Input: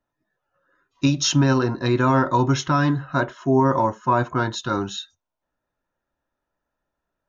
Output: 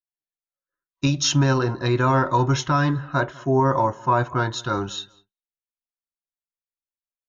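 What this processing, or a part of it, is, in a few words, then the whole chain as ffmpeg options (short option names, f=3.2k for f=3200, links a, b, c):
low shelf boost with a cut just above: -filter_complex "[0:a]lowshelf=f=74:g=5.5,equalizer=f=240:t=o:w=0.63:g=-6,asplit=2[a][b];[b]adelay=197,lowpass=f=3.9k:p=1,volume=-23.5dB,asplit=2[c][d];[d]adelay=197,lowpass=f=3.9k:p=1,volume=0.24[e];[a][c][e]amix=inputs=3:normalize=0,agate=range=-33dB:threshold=-49dB:ratio=3:detection=peak"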